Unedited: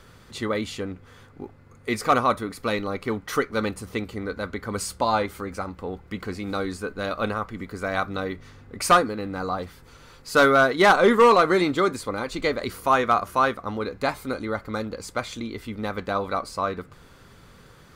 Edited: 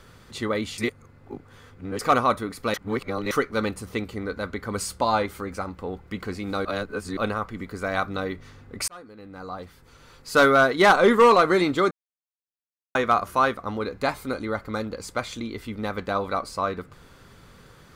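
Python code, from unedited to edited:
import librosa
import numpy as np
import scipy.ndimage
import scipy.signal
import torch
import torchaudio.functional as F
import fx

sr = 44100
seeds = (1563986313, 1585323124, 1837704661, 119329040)

y = fx.edit(x, sr, fx.reverse_span(start_s=0.78, length_s=1.21),
    fx.reverse_span(start_s=2.74, length_s=0.57),
    fx.reverse_span(start_s=6.65, length_s=0.52),
    fx.fade_in_span(start_s=8.88, length_s=1.52),
    fx.silence(start_s=11.91, length_s=1.04), tone=tone)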